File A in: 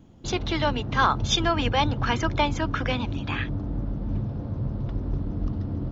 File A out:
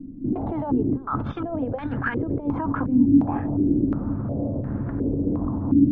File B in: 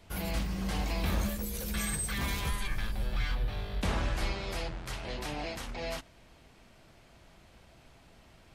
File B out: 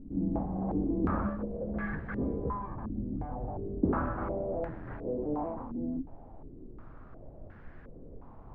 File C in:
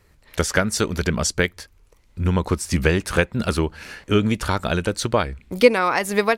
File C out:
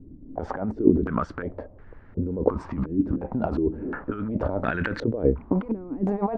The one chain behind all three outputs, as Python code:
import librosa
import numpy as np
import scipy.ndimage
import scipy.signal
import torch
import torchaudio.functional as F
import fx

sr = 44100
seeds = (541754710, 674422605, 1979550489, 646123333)

y = scipy.signal.sosfilt(scipy.signal.butter(2, 76.0, 'highpass', fs=sr, output='sos'), x)
y = fx.env_lowpass(y, sr, base_hz=500.0, full_db=-17.0)
y = fx.over_compress(y, sr, threshold_db=-30.0, ratio=-1.0)
y = fx.small_body(y, sr, hz=(270.0,), ring_ms=45, db=9)
y = fx.dmg_noise_colour(y, sr, seeds[0], colour='brown', level_db=-47.0)
y = fx.filter_held_lowpass(y, sr, hz=2.8, low_hz=280.0, high_hz=1700.0)